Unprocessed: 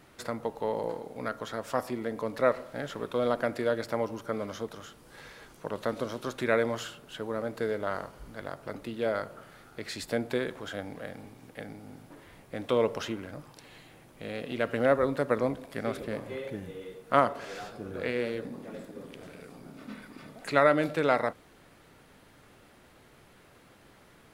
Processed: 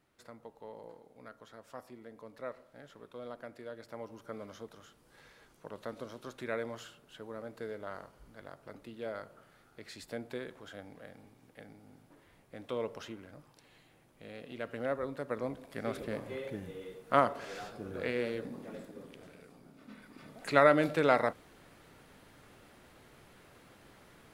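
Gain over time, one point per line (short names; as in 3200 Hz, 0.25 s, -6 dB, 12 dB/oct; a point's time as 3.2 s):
3.72 s -17 dB
4.28 s -10.5 dB
15.22 s -10.5 dB
16 s -3 dB
18.69 s -3 dB
19.78 s -10.5 dB
20.56 s -1 dB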